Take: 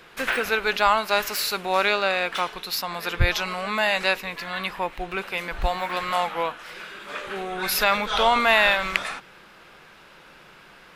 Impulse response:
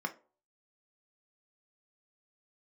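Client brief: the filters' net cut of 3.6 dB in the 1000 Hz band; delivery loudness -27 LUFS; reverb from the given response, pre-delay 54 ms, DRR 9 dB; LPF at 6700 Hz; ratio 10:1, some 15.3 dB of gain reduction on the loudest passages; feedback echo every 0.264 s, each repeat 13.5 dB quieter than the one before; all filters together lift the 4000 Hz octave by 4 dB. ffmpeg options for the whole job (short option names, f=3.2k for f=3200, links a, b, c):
-filter_complex "[0:a]lowpass=6.7k,equalizer=f=1k:t=o:g=-5,equalizer=f=4k:t=o:g=5.5,acompressor=threshold=-29dB:ratio=10,aecho=1:1:264|528:0.211|0.0444,asplit=2[a][b];[1:a]atrim=start_sample=2205,adelay=54[c];[b][c]afir=irnorm=-1:irlink=0,volume=-13dB[d];[a][d]amix=inputs=2:normalize=0,volume=5.5dB"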